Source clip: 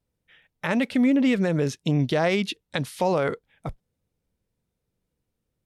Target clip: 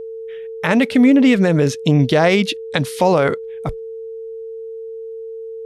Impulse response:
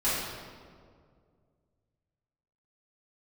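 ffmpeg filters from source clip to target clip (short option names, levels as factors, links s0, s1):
-af "aeval=exprs='val(0)+0.0158*sin(2*PI*450*n/s)':c=same,volume=2.66"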